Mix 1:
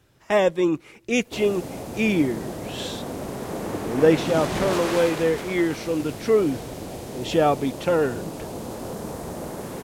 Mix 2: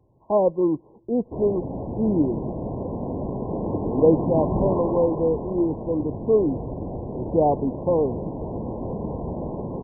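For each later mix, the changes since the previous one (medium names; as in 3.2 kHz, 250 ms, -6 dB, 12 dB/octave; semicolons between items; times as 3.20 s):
background: add tilt EQ -2 dB/octave; master: add brick-wall FIR low-pass 1.1 kHz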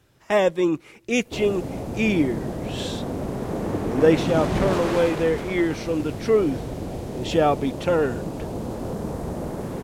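master: remove brick-wall FIR low-pass 1.1 kHz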